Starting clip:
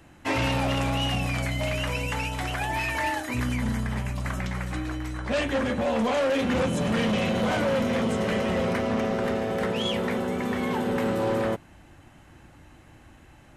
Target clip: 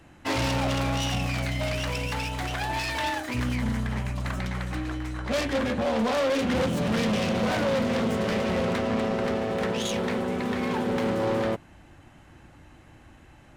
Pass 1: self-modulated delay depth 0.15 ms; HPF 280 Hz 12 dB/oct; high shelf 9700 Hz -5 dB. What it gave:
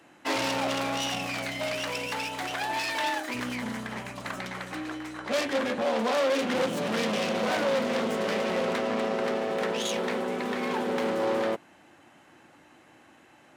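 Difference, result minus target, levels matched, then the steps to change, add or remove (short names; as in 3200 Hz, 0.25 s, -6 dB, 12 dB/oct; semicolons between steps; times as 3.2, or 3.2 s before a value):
250 Hz band -3.0 dB
remove: HPF 280 Hz 12 dB/oct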